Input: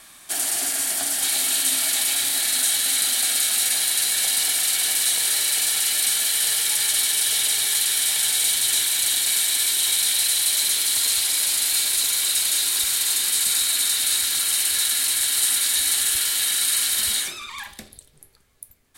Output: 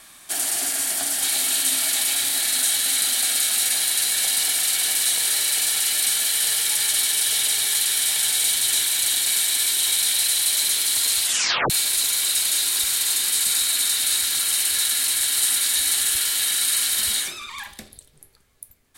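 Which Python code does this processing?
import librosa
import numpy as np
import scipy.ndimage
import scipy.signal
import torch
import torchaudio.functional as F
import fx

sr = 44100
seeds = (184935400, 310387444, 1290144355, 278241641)

y = fx.edit(x, sr, fx.tape_stop(start_s=11.25, length_s=0.45), tone=tone)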